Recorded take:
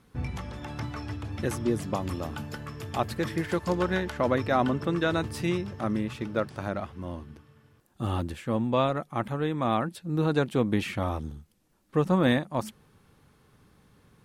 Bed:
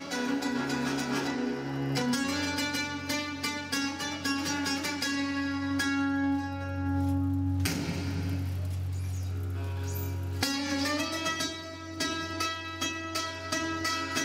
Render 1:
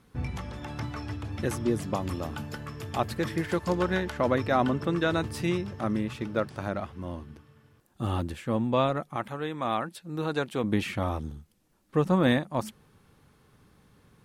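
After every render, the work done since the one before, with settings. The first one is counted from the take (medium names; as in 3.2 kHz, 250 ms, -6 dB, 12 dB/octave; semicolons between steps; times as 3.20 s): 9.16–10.64 s: bass shelf 380 Hz -9 dB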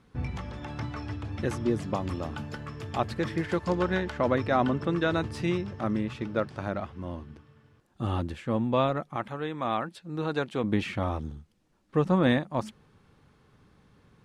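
distance through air 61 m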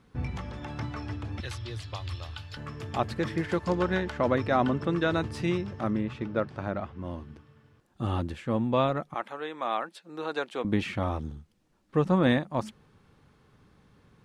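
1.40–2.57 s: FFT filter 110 Hz 0 dB, 190 Hz -29 dB, 290 Hz -18 dB, 2.2 kHz -1 dB, 4.1 kHz +9 dB, 6.3 kHz -2 dB; 5.90–7.05 s: treble shelf 4.8 kHz -10 dB; 9.14–10.65 s: high-pass 400 Hz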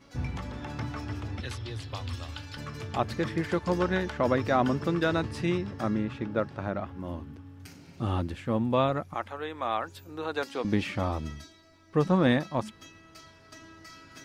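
add bed -18.5 dB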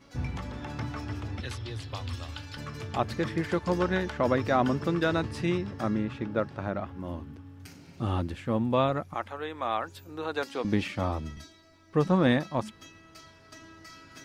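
10.88–11.37 s: three bands expanded up and down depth 40%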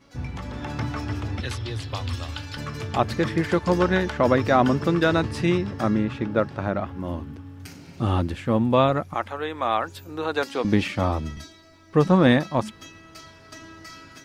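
level rider gain up to 6.5 dB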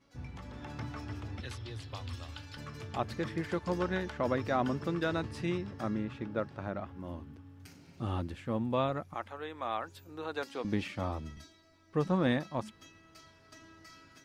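trim -12 dB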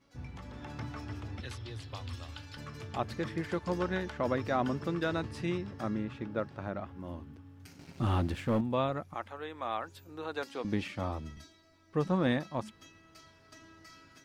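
7.79–8.61 s: waveshaping leveller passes 2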